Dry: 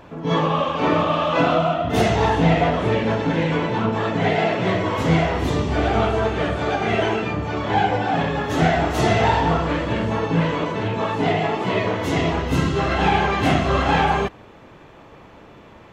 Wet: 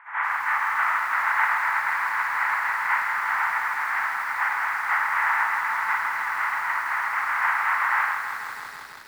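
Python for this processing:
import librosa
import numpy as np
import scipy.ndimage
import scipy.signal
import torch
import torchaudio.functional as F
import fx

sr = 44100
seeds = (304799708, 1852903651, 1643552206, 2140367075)

p1 = fx.spec_flatten(x, sr, power=0.14)
p2 = scipy.signal.sosfilt(scipy.signal.ellip(3, 1.0, 50, [890.0, 2000.0], 'bandpass', fs=sr, output='sos'), p1)
p3 = fx.stretch_vocoder_free(p2, sr, factor=0.57)
p4 = p3 + fx.echo_feedback(p3, sr, ms=117, feedback_pct=37, wet_db=-18.5, dry=0)
p5 = fx.echo_crushed(p4, sr, ms=162, feedback_pct=80, bits=8, wet_db=-8.0)
y = p5 * 10.0 ** (6.0 / 20.0)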